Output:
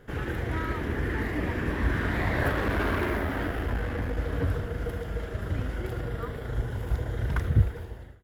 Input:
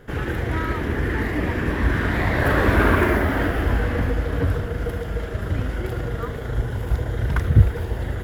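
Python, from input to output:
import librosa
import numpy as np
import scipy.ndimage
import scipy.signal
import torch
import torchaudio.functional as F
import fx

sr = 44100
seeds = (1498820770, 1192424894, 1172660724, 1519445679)

y = fx.fade_out_tail(x, sr, length_s=0.8)
y = fx.tube_stage(y, sr, drive_db=15.0, bias=0.45, at=(2.49, 4.18))
y = fx.notch(y, sr, hz=6500.0, q=6.4, at=(6.0, 6.48))
y = y * librosa.db_to_amplitude(-6.0)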